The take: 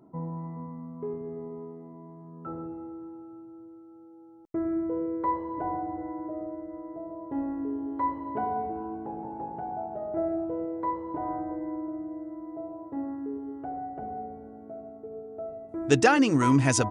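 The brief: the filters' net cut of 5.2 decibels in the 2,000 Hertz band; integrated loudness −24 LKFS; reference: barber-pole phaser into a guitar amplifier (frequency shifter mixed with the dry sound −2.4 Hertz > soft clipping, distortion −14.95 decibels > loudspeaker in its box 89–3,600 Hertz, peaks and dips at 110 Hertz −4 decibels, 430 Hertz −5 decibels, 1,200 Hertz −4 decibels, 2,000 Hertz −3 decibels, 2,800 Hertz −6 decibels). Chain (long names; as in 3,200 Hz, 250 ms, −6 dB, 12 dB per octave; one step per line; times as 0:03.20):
parametric band 2,000 Hz −4 dB
frequency shifter mixed with the dry sound −2.4 Hz
soft clipping −19.5 dBFS
loudspeaker in its box 89–3,600 Hz, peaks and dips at 110 Hz −4 dB, 430 Hz −5 dB, 1,200 Hz −4 dB, 2,000 Hz −3 dB, 2,800 Hz −6 dB
level +13 dB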